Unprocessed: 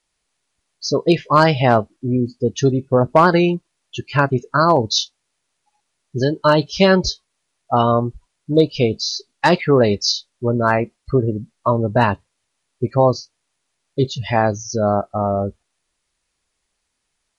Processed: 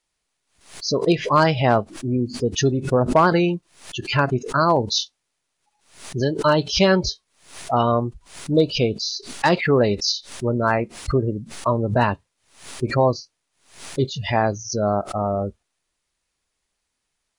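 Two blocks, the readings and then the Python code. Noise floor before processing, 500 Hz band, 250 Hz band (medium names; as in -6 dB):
-74 dBFS, -3.5 dB, -3.0 dB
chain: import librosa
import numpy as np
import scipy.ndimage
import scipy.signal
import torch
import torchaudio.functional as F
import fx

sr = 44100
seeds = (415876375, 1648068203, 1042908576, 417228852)

y = fx.pre_swell(x, sr, db_per_s=120.0)
y = y * 10.0 ** (-3.5 / 20.0)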